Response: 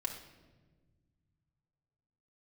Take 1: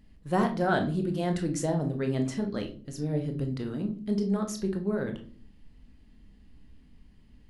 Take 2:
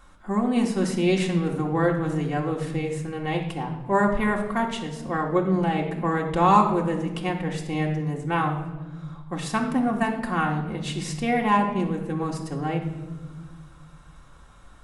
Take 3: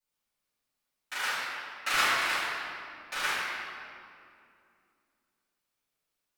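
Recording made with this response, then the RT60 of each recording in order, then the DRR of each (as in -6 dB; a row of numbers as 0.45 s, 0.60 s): 2; no single decay rate, no single decay rate, 2.5 s; 4.5 dB, -1.0 dB, -15.0 dB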